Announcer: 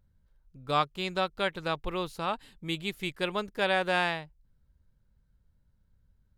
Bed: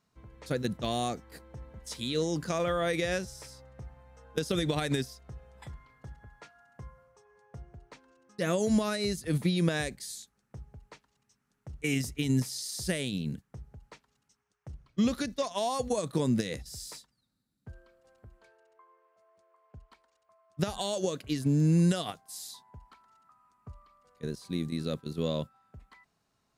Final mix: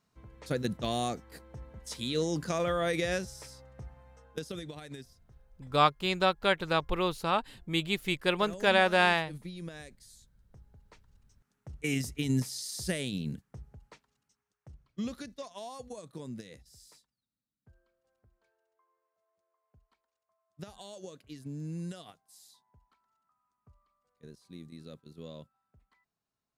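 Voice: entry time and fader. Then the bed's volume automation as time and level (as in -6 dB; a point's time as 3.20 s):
5.05 s, +3.0 dB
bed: 4.11 s -0.5 dB
4.75 s -15 dB
10.11 s -15 dB
11.49 s -1.5 dB
13.65 s -1.5 dB
16.05 s -14.5 dB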